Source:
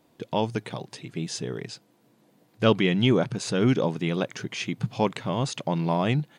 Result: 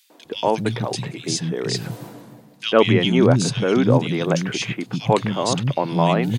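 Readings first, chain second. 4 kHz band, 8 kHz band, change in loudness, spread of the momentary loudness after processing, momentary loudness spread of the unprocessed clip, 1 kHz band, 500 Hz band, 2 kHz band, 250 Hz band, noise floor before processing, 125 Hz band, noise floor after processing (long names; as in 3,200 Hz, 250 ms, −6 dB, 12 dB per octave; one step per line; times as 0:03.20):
+7.0 dB, +9.0 dB, +6.0 dB, 11 LU, 14 LU, +7.5 dB, +7.0 dB, +5.5 dB, +5.5 dB, −64 dBFS, +6.0 dB, −50 dBFS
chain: reversed playback
upward compression, threshold −25 dBFS
reversed playback
three-band delay without the direct sound highs, mids, lows 100/250 ms, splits 240/2,300 Hz
level +7.5 dB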